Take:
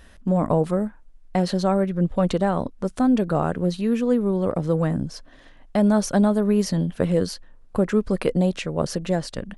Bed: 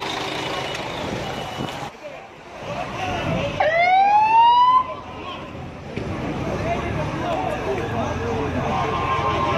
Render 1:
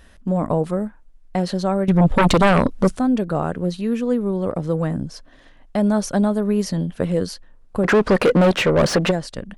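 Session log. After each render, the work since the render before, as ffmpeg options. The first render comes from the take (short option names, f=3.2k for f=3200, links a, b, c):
-filter_complex "[0:a]asettb=1/sr,asplit=3[a][b][c];[a]atrim=end=1.884[d];[b]atrim=start=1.88:end=2.97,asetpts=PTS-STARTPTS,afade=t=in:d=0.004:c=qsin,afade=t=out:st=1.086:d=0.004:c=qsin,aeval=exprs='0.355*sin(PI/2*2.82*val(0)/0.355)':c=same[e];[c]atrim=start=2.966[f];[d][e]acrossfade=d=0.004:c1=hsin:c2=qsin[g];[g][f]acrossfade=d=0.004:c1=qsin:c2=hsin,asplit=3[h][i][j];[h]afade=t=out:st=7.83:d=0.02[k];[i]asplit=2[l][m];[m]highpass=f=720:p=1,volume=31dB,asoftclip=type=tanh:threshold=-6dB[n];[l][n]amix=inputs=2:normalize=0,lowpass=f=1.6k:p=1,volume=-6dB,afade=t=in:st=7.83:d=0.02,afade=t=out:st=9.1:d=0.02[o];[j]afade=t=in:st=9.1:d=0.02[p];[k][o][p]amix=inputs=3:normalize=0"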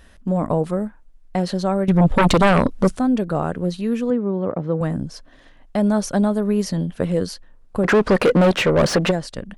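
-filter_complex "[0:a]asettb=1/sr,asplit=3[a][b][c];[a]atrim=end=4.104[d];[b]atrim=start=4.1:end=4.81,asetpts=PTS-STARTPTS,afade=t=in:d=0.004:c=qsin,afade=t=out:st=0.706:d=0.004:c=qsin,highpass=110,lowpass=2.4k[e];[c]atrim=start=4.806[f];[d][e]acrossfade=d=0.004:c1=hsin:c2=qsin[g];[g][f]acrossfade=d=0.004:c1=qsin:c2=hsin"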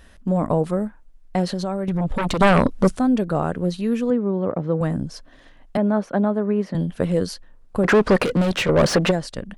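-filter_complex "[0:a]asettb=1/sr,asplit=3[a][b][c];[a]atrim=end=1.464[d];[b]atrim=start=1.46:end=2.41,asetpts=PTS-STARTPTS,afade=t=in:d=0.004:c=qsin,afade=t=out:st=0.946:d=0.004:c=qsin,acompressor=threshold=-20dB:ratio=6:attack=3.2:release=140:knee=1:detection=peak[e];[c]atrim=start=2.406[f];[d][e]acrossfade=d=0.004:c1=hsin:c2=qsin[g];[g][f]acrossfade=d=0.004:c1=qsin:c2=hsin,asettb=1/sr,asplit=3[h][i][j];[h]atrim=end=5.774[k];[i]atrim=start=5.77:end=6.75,asetpts=PTS-STARTPTS,afade=t=in:d=0.004:c=qsin,afade=t=out:st=0.976:d=0.004:c=qsin,acrossover=split=160 2700:gain=0.0708 1 0.0708[l][m][n];[l][m][n]amix=inputs=3:normalize=0[o];[j]atrim=start=6.746[p];[k][o]acrossfade=d=0.004:c1=hsin:c2=qsin[q];[q][p]acrossfade=d=0.004:c1=qsin:c2=hsin,asettb=1/sr,asplit=3[r][s][t];[r]atrim=end=8.244[u];[s]atrim=start=8.24:end=8.69,asetpts=PTS-STARTPTS,afade=t=in:d=0.004:c=qsin,afade=t=out:st=0.446:d=0.004:c=qsin,acrossover=split=180|3000[v][w][x];[w]acompressor=threshold=-25dB:ratio=2.5:attack=3.2:release=140:knee=2.83:detection=peak[y];[v][y][x]amix=inputs=3:normalize=0[z];[t]atrim=start=8.686[aa];[u][z]acrossfade=d=0.004:c1=hsin:c2=qsin[ab];[ab][aa]acrossfade=d=0.004:c1=qsin:c2=hsin"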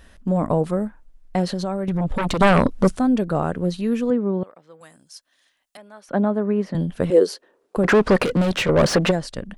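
-filter_complex "[0:a]asettb=1/sr,asplit=3[a][b][c];[a]atrim=end=4.434[d];[b]atrim=start=4.43:end=6.09,asetpts=PTS-STARTPTS,afade=t=in:d=0.004:c=qsin,afade=t=out:st=1.656:d=0.004:c=qsin,aderivative[e];[c]atrim=start=6.086[f];[d][e]acrossfade=d=0.004:c1=hsin:c2=qsin[g];[g][f]acrossfade=d=0.004:c1=qsin:c2=hsin,asettb=1/sr,asplit=3[h][i][j];[h]atrim=end=7.104[k];[i]atrim=start=7.1:end=7.77,asetpts=PTS-STARTPTS,afade=t=in:d=0.004:c=qsin,afade=t=out:st=0.666:d=0.004:c=qsin,highpass=f=400:t=q:w=4.9[l];[j]atrim=start=7.766[m];[k][l]acrossfade=d=0.004:c1=hsin:c2=qsin[n];[n][m]acrossfade=d=0.004:c1=qsin:c2=hsin"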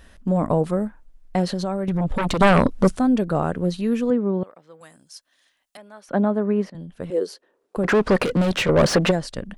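-filter_complex "[0:a]asplit=2[a][b];[a]atrim=end=6.7,asetpts=PTS-STARTPTS,afade=t=out:st=6.696:d=0.004:c=hsin:silence=0.16788[c];[b]atrim=start=6.7,asetpts=PTS-STARTPTS,afade=t=in:d=1.82:silence=0.16788[d];[c][d]concat=n=2:v=0:a=1"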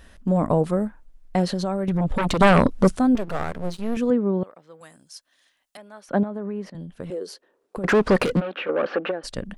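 -filter_complex "[0:a]asettb=1/sr,asplit=3[a][b][c];[a]atrim=end=3.154[d];[b]atrim=start=3.15:end=3.97,asetpts=PTS-STARTPTS,afade=t=in:d=0.004:c=qsin,afade=t=out:st=0.816:d=0.004:c=qsin,aeval=exprs='max(val(0),0)':c=same[e];[c]atrim=start=3.966[f];[d][e]acrossfade=d=0.004:c1=hsin:c2=qsin[g];[g][f]acrossfade=d=0.004:c1=qsin:c2=hsin,asettb=1/sr,asplit=3[h][i][j];[h]atrim=end=6.234[k];[i]atrim=start=6.23:end=7.84,asetpts=PTS-STARTPTS,afade=t=in:d=0.004:c=qsin,afade=t=out:st=1.606:d=0.004:c=qsin,acompressor=threshold=-27dB:ratio=5:attack=3.2:release=140:knee=1:detection=peak[l];[j]atrim=start=7.836[m];[k][l]acrossfade=d=0.004:c1=hsin:c2=qsin[n];[n][m]acrossfade=d=0.004:c1=qsin:c2=hsin,asplit=3[o][p][q];[o]afade=t=out:st=8.39:d=0.02[r];[p]highpass=f=330:w=0.5412,highpass=f=330:w=1.3066,equalizer=f=390:t=q:w=4:g=-7,equalizer=f=650:t=q:w=4:g=-9,equalizer=f=980:t=q:w=4:g=-10,equalizer=f=2k:t=q:w=4:g=-10,lowpass=f=2.4k:w=0.5412,lowpass=f=2.4k:w=1.3066,afade=t=in:st=8.39:d=0.02,afade=t=out:st=9.23:d=0.02[s];[q]afade=t=in:st=9.23:d=0.02[t];[r][s][t]amix=inputs=3:normalize=0"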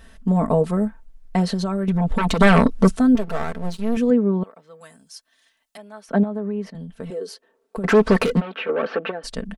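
-af "aecho=1:1:4.5:0.65"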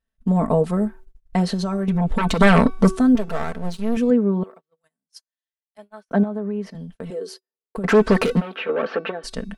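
-af "bandreject=f=377.8:t=h:w=4,bandreject=f=755.6:t=h:w=4,bandreject=f=1.1334k:t=h:w=4,bandreject=f=1.5112k:t=h:w=4,bandreject=f=1.889k:t=h:w=4,bandreject=f=2.2668k:t=h:w=4,bandreject=f=2.6446k:t=h:w=4,bandreject=f=3.0224k:t=h:w=4,bandreject=f=3.4002k:t=h:w=4,bandreject=f=3.778k:t=h:w=4,bandreject=f=4.1558k:t=h:w=4,bandreject=f=4.5336k:t=h:w=4,bandreject=f=4.9114k:t=h:w=4,bandreject=f=5.2892k:t=h:w=4,bandreject=f=5.667k:t=h:w=4,bandreject=f=6.0448k:t=h:w=4,bandreject=f=6.4226k:t=h:w=4,bandreject=f=6.8004k:t=h:w=4,bandreject=f=7.1782k:t=h:w=4,bandreject=f=7.556k:t=h:w=4,bandreject=f=7.9338k:t=h:w=4,bandreject=f=8.3116k:t=h:w=4,bandreject=f=8.6894k:t=h:w=4,bandreject=f=9.0672k:t=h:w=4,bandreject=f=9.445k:t=h:w=4,bandreject=f=9.8228k:t=h:w=4,bandreject=f=10.2006k:t=h:w=4,bandreject=f=10.5784k:t=h:w=4,bandreject=f=10.9562k:t=h:w=4,bandreject=f=11.334k:t=h:w=4,bandreject=f=11.7118k:t=h:w=4,bandreject=f=12.0896k:t=h:w=4,bandreject=f=12.4674k:t=h:w=4,bandreject=f=12.8452k:t=h:w=4,bandreject=f=13.223k:t=h:w=4,bandreject=f=13.6008k:t=h:w=4,bandreject=f=13.9786k:t=h:w=4,bandreject=f=14.3564k:t=h:w=4,bandreject=f=14.7342k:t=h:w=4,bandreject=f=15.112k:t=h:w=4,agate=range=-36dB:threshold=-39dB:ratio=16:detection=peak"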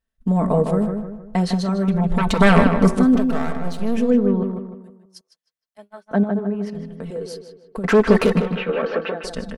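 -filter_complex "[0:a]asplit=2[a][b];[b]adelay=155,lowpass=f=2.6k:p=1,volume=-6dB,asplit=2[c][d];[d]adelay=155,lowpass=f=2.6k:p=1,volume=0.42,asplit=2[e][f];[f]adelay=155,lowpass=f=2.6k:p=1,volume=0.42,asplit=2[g][h];[h]adelay=155,lowpass=f=2.6k:p=1,volume=0.42,asplit=2[i][j];[j]adelay=155,lowpass=f=2.6k:p=1,volume=0.42[k];[a][c][e][g][i][k]amix=inputs=6:normalize=0"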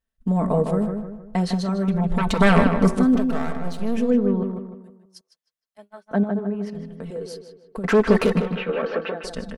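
-af "volume=-2.5dB"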